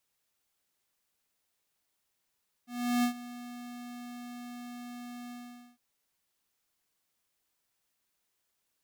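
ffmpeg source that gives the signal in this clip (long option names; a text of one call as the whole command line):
ffmpeg -f lavfi -i "aevalsrc='0.0501*(2*lt(mod(243*t,1),0.5)-1)':duration=3.105:sample_rate=44100,afade=type=in:duration=0.364,afade=type=out:start_time=0.364:duration=0.096:silence=0.133,afade=type=out:start_time=2.64:duration=0.465" out.wav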